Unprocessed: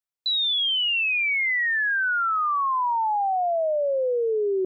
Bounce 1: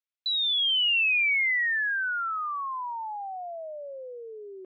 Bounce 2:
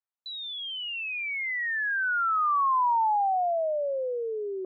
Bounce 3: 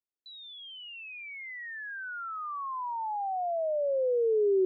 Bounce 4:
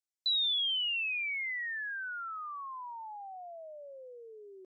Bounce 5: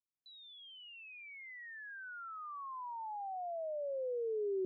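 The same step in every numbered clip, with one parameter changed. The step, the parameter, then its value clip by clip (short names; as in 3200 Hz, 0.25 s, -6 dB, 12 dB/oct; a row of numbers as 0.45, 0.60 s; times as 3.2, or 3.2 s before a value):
band-pass, frequency: 2600, 990, 330, 6600, 120 Hz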